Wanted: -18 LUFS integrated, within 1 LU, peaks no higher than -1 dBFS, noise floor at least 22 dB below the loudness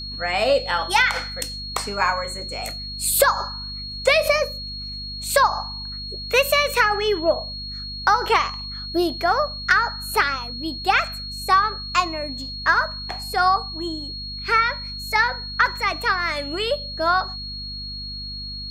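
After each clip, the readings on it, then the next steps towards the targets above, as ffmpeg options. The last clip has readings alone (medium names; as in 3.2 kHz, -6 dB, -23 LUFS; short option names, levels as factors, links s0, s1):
hum 50 Hz; highest harmonic 250 Hz; hum level -35 dBFS; steady tone 4.3 kHz; tone level -31 dBFS; loudness -22.0 LUFS; peak level -5.0 dBFS; loudness target -18.0 LUFS
-> -af "bandreject=f=50:t=h:w=6,bandreject=f=100:t=h:w=6,bandreject=f=150:t=h:w=6,bandreject=f=200:t=h:w=6,bandreject=f=250:t=h:w=6"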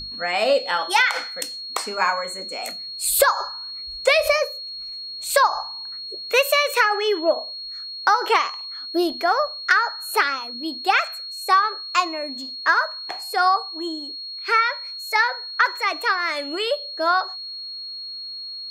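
hum not found; steady tone 4.3 kHz; tone level -31 dBFS
-> -af "bandreject=f=4300:w=30"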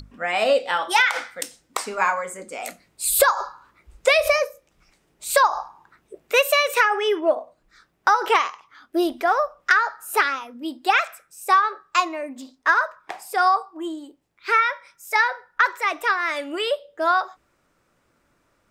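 steady tone not found; loudness -21.5 LUFS; peak level -5.5 dBFS; loudness target -18.0 LUFS
-> -af "volume=1.5"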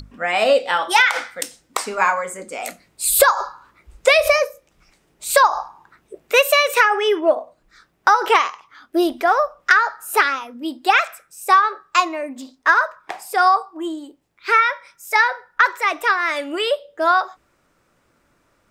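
loudness -17.5 LUFS; peak level -1.5 dBFS; noise floor -63 dBFS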